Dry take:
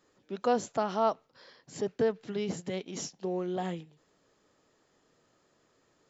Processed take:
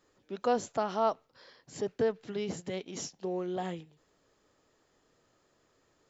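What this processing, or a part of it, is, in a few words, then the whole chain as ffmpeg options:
low shelf boost with a cut just above: -af "lowshelf=frequency=88:gain=7,equalizer=frequency=180:width_type=o:width=1:gain=-3.5,volume=-1dB"

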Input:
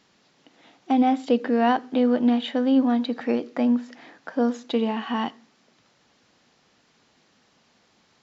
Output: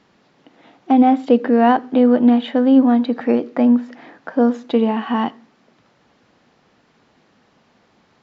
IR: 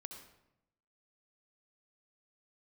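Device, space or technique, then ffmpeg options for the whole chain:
through cloth: -af "highshelf=frequency=3300:gain=-14.5,volume=7.5dB"

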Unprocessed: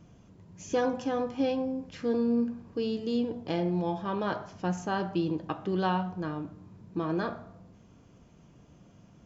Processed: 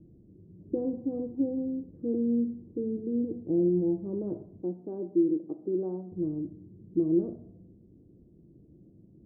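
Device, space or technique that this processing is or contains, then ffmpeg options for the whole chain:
under water: -filter_complex "[0:a]asettb=1/sr,asplit=3[link_01][link_02][link_03];[link_01]atrim=end=4.624[link_04];[link_02]atrim=start=4.62:end=6.12,asetpts=PTS-STARTPTS,afade=type=in:duration=0.004:curve=qsin,afade=type=out:start_time=1.496:duration=0.004:curve=qsin,highpass=290[link_05];[link_03]atrim=start=6.116[link_06];[link_04][link_05]acrossfade=duration=0.004:curve1=hsin:curve2=qsin[link_07];[link_07][link_06]acrossfade=duration=0.004:curve1=qsin:curve2=hsin,lowpass=frequency=440:width=0.5412,lowpass=frequency=440:width=1.3066,equalizer=frequency=340:width_type=o:width=0.36:gain=10,volume=-1dB"

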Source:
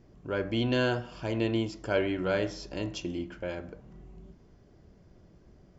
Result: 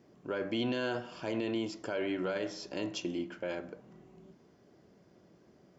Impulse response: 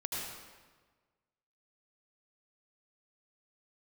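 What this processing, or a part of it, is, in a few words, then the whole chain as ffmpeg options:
stacked limiters: -af "highpass=200,alimiter=limit=-19dB:level=0:latency=1:release=322,alimiter=level_in=1dB:limit=-24dB:level=0:latency=1:release=12,volume=-1dB"

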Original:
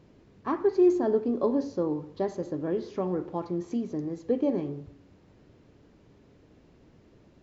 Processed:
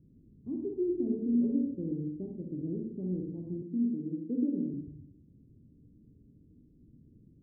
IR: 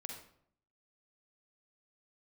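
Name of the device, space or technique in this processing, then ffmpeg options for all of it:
next room: -filter_complex "[0:a]lowpass=frequency=290:width=0.5412,lowpass=frequency=290:width=1.3066[link_01];[1:a]atrim=start_sample=2205[link_02];[link_01][link_02]afir=irnorm=-1:irlink=0,asettb=1/sr,asplit=3[link_03][link_04][link_05];[link_03]atrim=end=3.624[link_06];[link_04]atrim=start=3.62:end=4.74,asetpts=PTS-STARTPTS,afade=type=in:duration=0.004:curve=qsin,afade=type=out:start_time=1.116:duration=0.004:curve=qsin,highpass=frequency=170:width=0.5412,highpass=frequency=170:width=1.3066[link_07];[link_05]atrim=start=4.736[link_08];[link_06][link_07]acrossfade=duration=0.004:curve1=hsin:curve2=qsin[link_09];[link_09][link_08]acrossfade=duration=0.004:curve1=qsin:curve2=hsin,volume=3dB"

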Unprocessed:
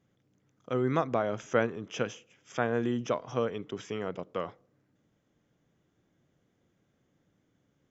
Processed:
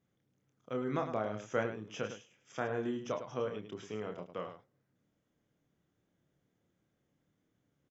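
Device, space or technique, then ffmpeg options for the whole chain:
slapback doubling: -filter_complex "[0:a]asplit=3[link_01][link_02][link_03];[link_02]adelay=28,volume=-6dB[link_04];[link_03]adelay=105,volume=-9.5dB[link_05];[link_01][link_04][link_05]amix=inputs=3:normalize=0,volume=-7.5dB"

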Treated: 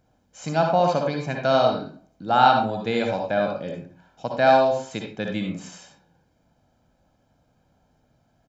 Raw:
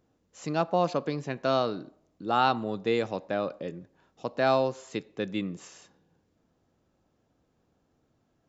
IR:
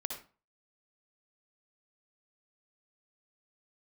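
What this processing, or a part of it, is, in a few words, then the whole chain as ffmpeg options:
microphone above a desk: -filter_complex "[0:a]aecho=1:1:1.3:0.56[link_01];[1:a]atrim=start_sample=2205[link_02];[link_01][link_02]afir=irnorm=-1:irlink=0,volume=5dB"

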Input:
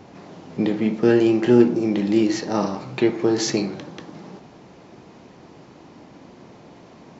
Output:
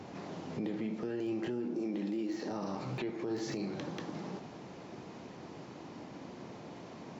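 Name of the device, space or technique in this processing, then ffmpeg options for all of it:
podcast mastering chain: -filter_complex "[0:a]asettb=1/sr,asplit=3[link_01][link_02][link_03];[link_01]atrim=end=1.664[link_04];[link_02]atrim=start=1.66:end=2.51,asetpts=PTS-STARTPTS,afade=type=in:duration=0.004:curve=qsin,afade=type=out:start_time=0.846:duration=0.004:curve=qsin,lowshelf=frequency=170:width_type=q:width=1.5:gain=-8[link_05];[link_03]atrim=start=2.506[link_06];[link_04][link_05]acrossfade=duration=0.004:curve1=hsin:curve2=qsin[link_07];[link_07][link_06]acrossfade=duration=0.004:curve1=qsin:curve2=hsin,highpass=73,deesser=0.95,acompressor=threshold=-30dB:ratio=4,alimiter=level_in=2.5dB:limit=-24dB:level=0:latency=1:release=23,volume=-2.5dB,volume=-1.5dB" -ar 44100 -c:a libmp3lame -b:a 112k

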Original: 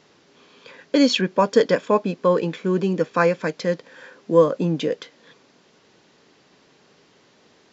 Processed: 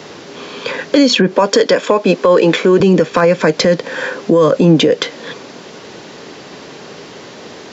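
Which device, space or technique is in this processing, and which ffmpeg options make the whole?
mastering chain: -filter_complex "[0:a]asettb=1/sr,asplit=3[link_01][link_02][link_03];[link_01]atrim=end=1.334[link_04];[link_02]atrim=start=1.33:end=2.8,asetpts=PTS-STARTPTS,afade=type=in:duration=0.004:curve=qsin,afade=type=out:start_time=1.466:duration=0.004:curve=qsin,highpass=270[link_05];[link_03]atrim=start=2.796[link_06];[link_04][link_05]acrossfade=duration=0.004:curve1=hsin:curve2=qsin[link_07];[link_07][link_06]acrossfade=duration=0.004:curve1=qsin:curve2=hsin,highpass=42,equalizer=frequency=510:width_type=o:width=1.7:gain=3,acrossover=split=160|1500[link_08][link_09][link_10];[link_08]acompressor=threshold=-35dB:ratio=4[link_11];[link_09]acompressor=threshold=-19dB:ratio=4[link_12];[link_10]acompressor=threshold=-31dB:ratio=4[link_13];[link_11][link_12][link_13]amix=inputs=3:normalize=0,acompressor=threshold=-27dB:ratio=2,asoftclip=type=hard:threshold=-16dB,alimiter=level_in=22.5dB:limit=-1dB:release=50:level=0:latency=1,volume=-1dB"

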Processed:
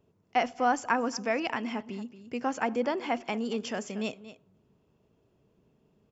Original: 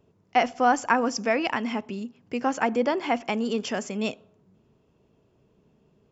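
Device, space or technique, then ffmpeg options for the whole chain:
ducked delay: -filter_complex "[0:a]asplit=3[link_01][link_02][link_03];[link_02]adelay=229,volume=-7dB[link_04];[link_03]apad=whole_len=279961[link_05];[link_04][link_05]sidechaincompress=threshold=-32dB:ratio=8:attack=12:release=1010[link_06];[link_01][link_06]amix=inputs=2:normalize=0,volume=-5dB"

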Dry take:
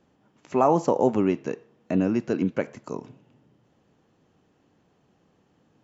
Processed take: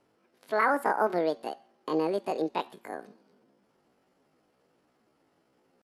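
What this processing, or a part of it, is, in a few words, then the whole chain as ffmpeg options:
chipmunk voice: -af "asetrate=74167,aresample=44100,atempo=0.594604,volume=-5dB"

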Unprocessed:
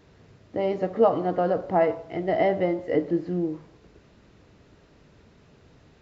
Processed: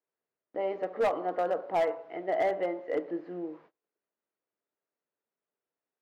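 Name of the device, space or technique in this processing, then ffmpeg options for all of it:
walkie-talkie: -af "highpass=470,lowpass=2300,asoftclip=type=hard:threshold=-19dB,agate=range=-29dB:threshold=-52dB:ratio=16:detection=peak,volume=-3dB"

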